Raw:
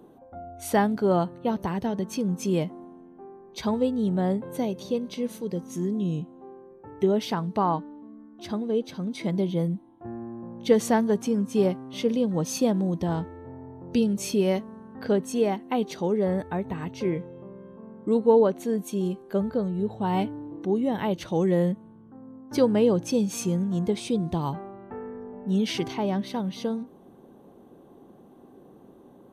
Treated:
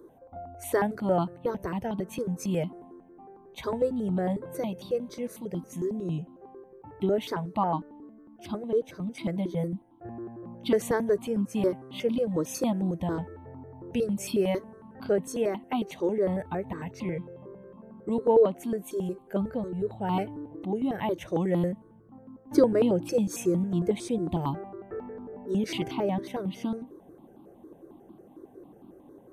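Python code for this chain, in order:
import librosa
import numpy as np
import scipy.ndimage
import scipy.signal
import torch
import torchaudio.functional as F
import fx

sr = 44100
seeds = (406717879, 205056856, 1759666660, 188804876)

y = fx.peak_eq(x, sr, hz=320.0, db=fx.steps((0.0, 6.0), (22.47, 14.0)), octaves=0.5)
y = fx.phaser_held(y, sr, hz=11.0, low_hz=760.0, high_hz=1800.0)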